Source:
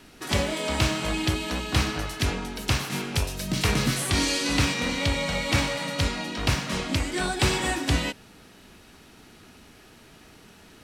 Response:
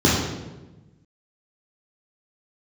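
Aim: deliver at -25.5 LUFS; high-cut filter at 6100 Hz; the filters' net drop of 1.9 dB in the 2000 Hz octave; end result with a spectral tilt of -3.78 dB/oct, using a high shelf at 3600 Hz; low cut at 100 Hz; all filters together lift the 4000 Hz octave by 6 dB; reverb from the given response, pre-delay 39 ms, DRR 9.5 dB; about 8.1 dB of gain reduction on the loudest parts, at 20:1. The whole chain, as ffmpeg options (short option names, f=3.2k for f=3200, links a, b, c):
-filter_complex "[0:a]highpass=100,lowpass=6.1k,equalizer=f=2k:t=o:g=-6,highshelf=f=3.6k:g=3,equalizer=f=4k:t=o:g=8,acompressor=threshold=-27dB:ratio=20,asplit=2[a][b];[1:a]atrim=start_sample=2205,adelay=39[c];[b][c]afir=irnorm=-1:irlink=0,volume=-30.5dB[d];[a][d]amix=inputs=2:normalize=0,volume=4dB"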